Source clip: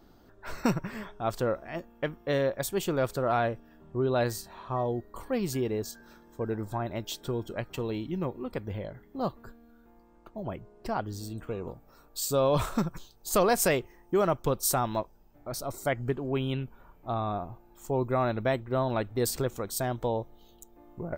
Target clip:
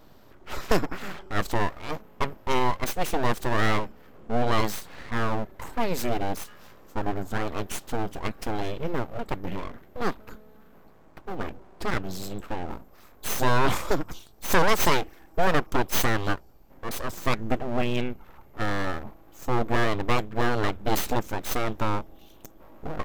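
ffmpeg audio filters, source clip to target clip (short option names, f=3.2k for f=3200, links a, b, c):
-af "aeval=exprs='abs(val(0))':c=same,asetrate=40517,aresample=44100,volume=6.5dB"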